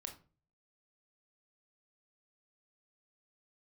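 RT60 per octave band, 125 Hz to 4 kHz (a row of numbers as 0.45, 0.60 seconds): 0.65, 0.50, 0.40, 0.35, 0.30, 0.25 seconds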